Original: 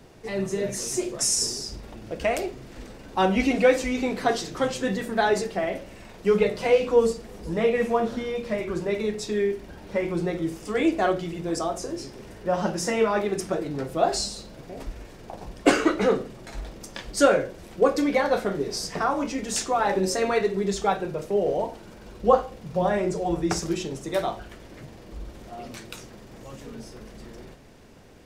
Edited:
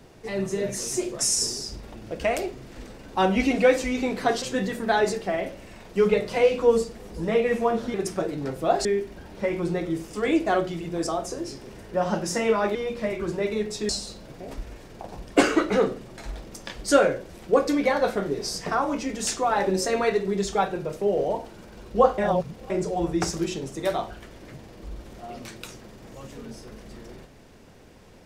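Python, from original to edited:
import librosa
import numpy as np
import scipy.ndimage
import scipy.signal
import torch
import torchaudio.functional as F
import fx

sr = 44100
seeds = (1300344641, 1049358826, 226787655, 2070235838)

y = fx.edit(x, sr, fx.cut(start_s=4.42, length_s=0.29),
    fx.swap(start_s=8.23, length_s=1.14, other_s=13.27, other_length_s=0.91),
    fx.reverse_span(start_s=22.47, length_s=0.52), tone=tone)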